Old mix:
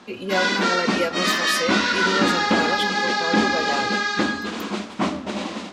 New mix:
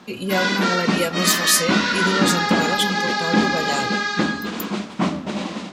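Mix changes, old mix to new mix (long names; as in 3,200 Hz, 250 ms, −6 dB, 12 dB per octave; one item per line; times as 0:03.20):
speech: add bass and treble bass +3 dB, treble +15 dB
master: add parametric band 160 Hz +11 dB 0.45 octaves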